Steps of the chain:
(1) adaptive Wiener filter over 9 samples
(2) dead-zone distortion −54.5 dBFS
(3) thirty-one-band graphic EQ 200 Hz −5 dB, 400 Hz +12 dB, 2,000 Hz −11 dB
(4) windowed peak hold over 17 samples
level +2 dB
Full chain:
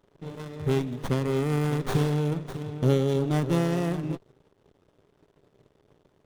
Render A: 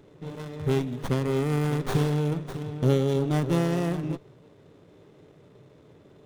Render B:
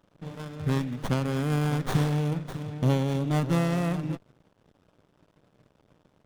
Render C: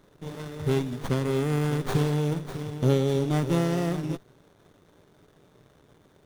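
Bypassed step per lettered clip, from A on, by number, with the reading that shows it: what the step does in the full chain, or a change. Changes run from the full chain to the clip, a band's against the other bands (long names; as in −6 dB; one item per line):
2, distortion level −27 dB
3, change in crest factor −1.5 dB
1, 8 kHz band +2.0 dB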